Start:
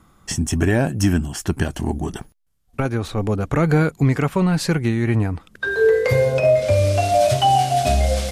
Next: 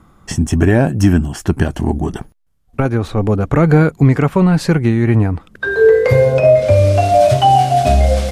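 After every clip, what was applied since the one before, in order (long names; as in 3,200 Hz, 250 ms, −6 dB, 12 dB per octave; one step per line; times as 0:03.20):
high-shelf EQ 2,300 Hz −8.5 dB
level +6.5 dB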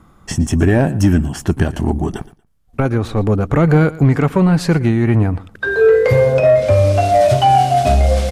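soft clipping −3 dBFS, distortion −22 dB
repeating echo 117 ms, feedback 19%, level −19 dB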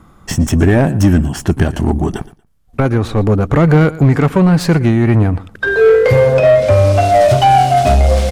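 stylus tracing distortion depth 0.035 ms
in parallel at −6 dB: hard clipping −13.5 dBFS, distortion −10 dB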